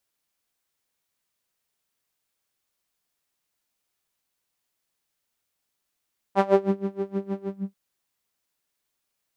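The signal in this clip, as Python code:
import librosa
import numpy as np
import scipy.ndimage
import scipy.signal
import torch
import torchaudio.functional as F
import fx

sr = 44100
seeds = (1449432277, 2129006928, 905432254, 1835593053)

y = fx.sub_patch_tremolo(sr, seeds[0], note=55, wave='saw', wave2='saw', interval_st=0, detune_cents=20, level2_db=-9.0, sub_db=-26.5, noise_db=-30.0, kind='bandpass', cutoff_hz=150.0, q=2.4, env_oct=2.5, env_decay_s=0.35, env_sustain_pct=45, attack_ms=59.0, decay_s=0.39, sustain_db=-14, release_s=0.31, note_s=1.08, lfo_hz=6.4, tremolo_db=23.0)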